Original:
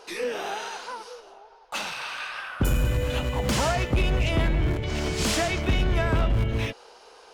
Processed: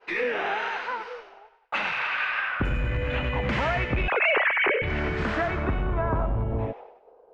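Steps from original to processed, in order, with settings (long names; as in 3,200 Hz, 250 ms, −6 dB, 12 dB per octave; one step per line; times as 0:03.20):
0:04.08–0:04.82: three sine waves on the formant tracks
downward expander −42 dBFS
downward compressor 3 to 1, threshold −27 dBFS, peak gain reduction 9.5 dB
soft clipping −18 dBFS, distortion −27 dB
low-pass filter sweep 2,100 Hz → 580 Hz, 0:04.75–0:07.26
delay with a high-pass on its return 97 ms, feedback 42%, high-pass 2,000 Hz, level −6.5 dB
level +3 dB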